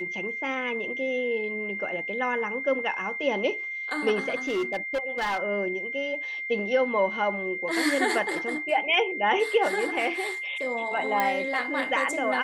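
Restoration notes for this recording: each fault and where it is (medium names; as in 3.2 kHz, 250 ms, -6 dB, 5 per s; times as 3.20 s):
whine 2.1 kHz -31 dBFS
4.47–5.38 s: clipped -23.5 dBFS
11.20 s: pop -11 dBFS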